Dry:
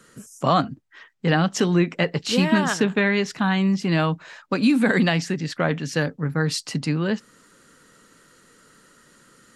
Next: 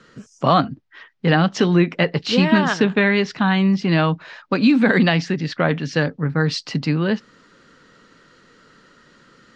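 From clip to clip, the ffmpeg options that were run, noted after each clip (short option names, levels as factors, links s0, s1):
-af "lowpass=f=5200:w=0.5412,lowpass=f=5200:w=1.3066,volume=1.5"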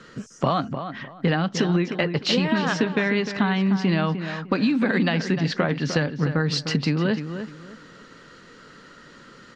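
-filter_complex "[0:a]acompressor=threshold=0.0708:ratio=6,asplit=2[s0][s1];[s1]adelay=303,lowpass=f=2600:p=1,volume=0.355,asplit=2[s2][s3];[s3]adelay=303,lowpass=f=2600:p=1,volume=0.26,asplit=2[s4][s5];[s5]adelay=303,lowpass=f=2600:p=1,volume=0.26[s6];[s2][s4][s6]amix=inputs=3:normalize=0[s7];[s0][s7]amix=inputs=2:normalize=0,volume=1.58"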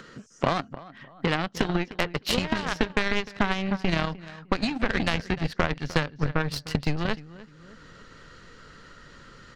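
-af "aeval=exprs='0.596*(cos(1*acos(clip(val(0)/0.596,-1,1)))-cos(1*PI/2))+0.0188*(cos(5*acos(clip(val(0)/0.596,-1,1)))-cos(5*PI/2))+0.0841*(cos(7*acos(clip(val(0)/0.596,-1,1)))-cos(7*PI/2))':c=same,asubboost=boost=5.5:cutoff=93,acompressor=mode=upward:threshold=0.0178:ratio=2.5"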